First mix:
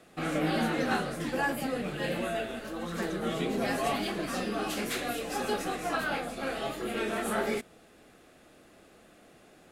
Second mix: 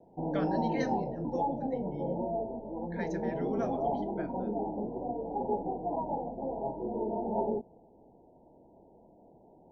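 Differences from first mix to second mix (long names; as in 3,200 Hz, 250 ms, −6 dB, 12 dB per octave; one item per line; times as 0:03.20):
background: add Chebyshev low-pass filter 960 Hz, order 10
master: remove notch filter 950 Hz, Q 5.5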